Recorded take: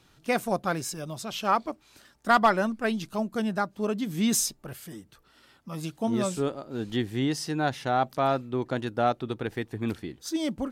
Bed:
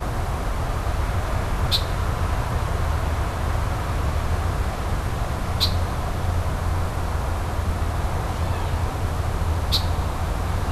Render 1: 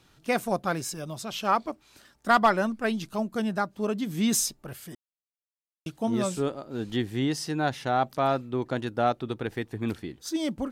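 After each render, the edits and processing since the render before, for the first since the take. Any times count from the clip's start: 4.95–5.86 mute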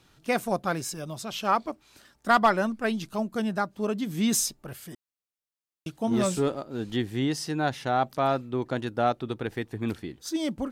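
6.11–6.63 sample leveller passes 1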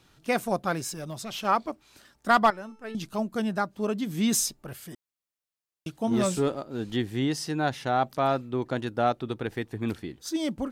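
0.89–1.45 overloaded stage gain 30.5 dB; 2.5–2.95 resonator 440 Hz, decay 0.73 s, mix 80%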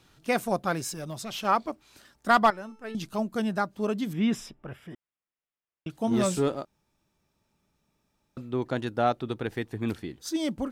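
4.13–5.9 polynomial smoothing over 25 samples; 6.65–8.37 room tone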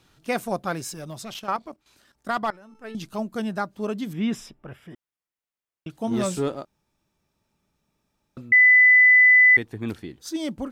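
1.34–2.75 level quantiser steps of 12 dB; 8.52–9.57 bleep 2000 Hz -10.5 dBFS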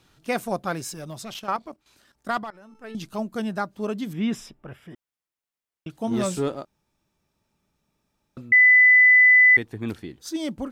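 2.39–2.94 compressor 3:1, threshold -34 dBFS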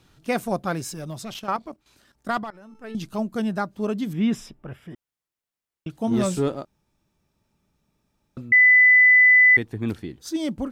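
low shelf 320 Hz +5 dB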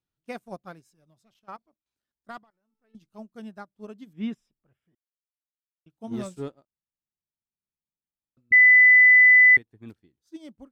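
upward expander 2.5:1, over -35 dBFS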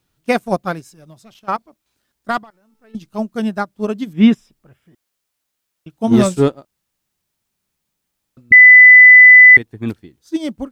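maximiser +20.5 dB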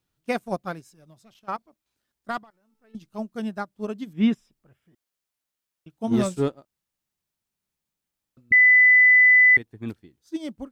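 gain -10 dB

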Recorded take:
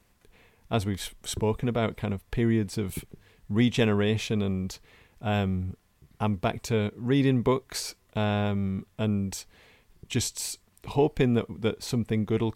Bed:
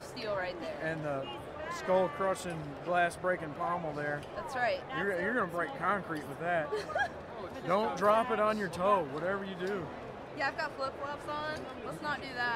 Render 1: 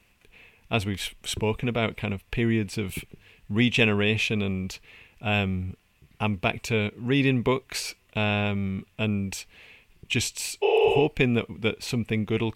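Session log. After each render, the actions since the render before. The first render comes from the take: 10.65–10.98 spectral repair 330–6400 Hz after; bell 2600 Hz +13 dB 0.6 oct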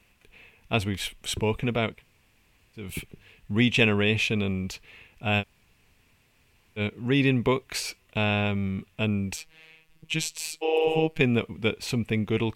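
1.92–2.85 room tone, crossfade 0.24 s; 5.41–6.79 room tone, crossfade 0.06 s; 9.36–11.21 robotiser 159 Hz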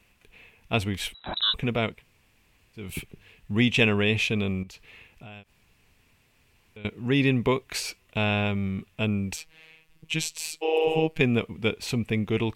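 1.14–1.54 inverted band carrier 3900 Hz; 4.63–6.85 compressor 10:1, threshold -41 dBFS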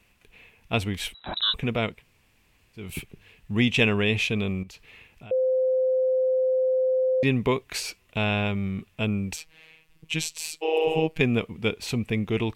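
5.31–7.23 bleep 517 Hz -19.5 dBFS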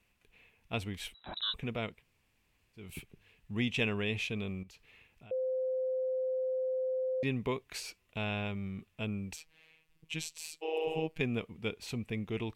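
gain -10.5 dB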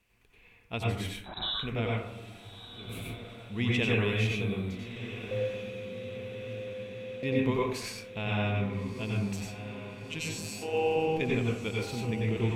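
diffused feedback echo 1.317 s, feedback 65%, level -12 dB; plate-style reverb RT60 0.66 s, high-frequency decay 0.35×, pre-delay 80 ms, DRR -3.5 dB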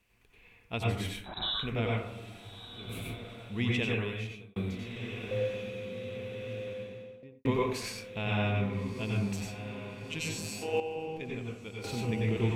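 3.54–4.56 fade out; 6.68–7.45 studio fade out; 10.8–11.84 gain -9.5 dB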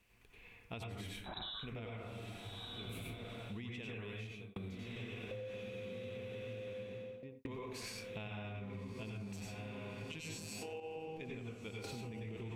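limiter -27 dBFS, peak gain reduction 11.5 dB; compressor 10:1, threshold -42 dBFS, peak gain reduction 11.5 dB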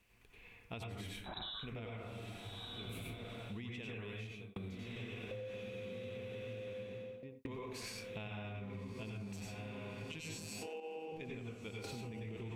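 10.67–11.12 steep high-pass 190 Hz

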